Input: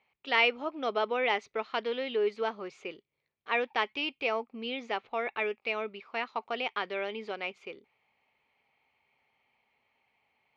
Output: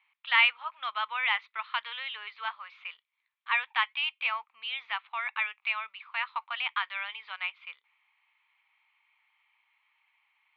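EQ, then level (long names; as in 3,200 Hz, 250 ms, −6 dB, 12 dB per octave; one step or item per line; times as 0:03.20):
elliptic band-pass filter 1,000–3,700 Hz, stop band 50 dB
+4.5 dB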